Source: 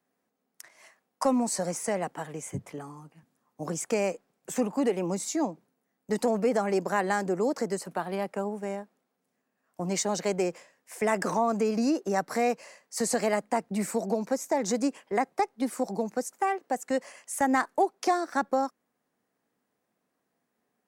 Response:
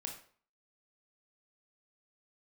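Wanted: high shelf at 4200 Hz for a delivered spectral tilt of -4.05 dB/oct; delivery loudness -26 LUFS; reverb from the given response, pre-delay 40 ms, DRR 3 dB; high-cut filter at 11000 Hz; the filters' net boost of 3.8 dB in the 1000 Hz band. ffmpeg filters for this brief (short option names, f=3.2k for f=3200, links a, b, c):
-filter_complex "[0:a]lowpass=11k,equalizer=f=1k:t=o:g=5.5,highshelf=f=4.2k:g=-3.5,asplit=2[a][b];[1:a]atrim=start_sample=2205,adelay=40[c];[b][c]afir=irnorm=-1:irlink=0,volume=-1dB[d];[a][d]amix=inputs=2:normalize=0"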